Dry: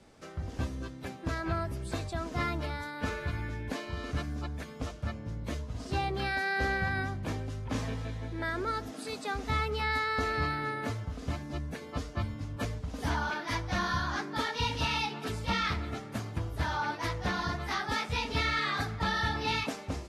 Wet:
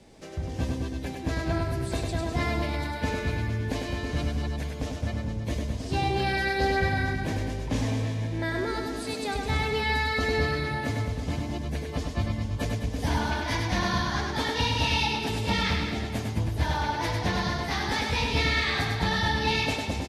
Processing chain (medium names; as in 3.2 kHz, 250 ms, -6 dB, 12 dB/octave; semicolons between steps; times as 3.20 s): peaking EQ 1.3 kHz -10 dB 0.5 oct; reverse bouncing-ball echo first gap 100 ms, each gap 1.1×, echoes 5; trim +4.5 dB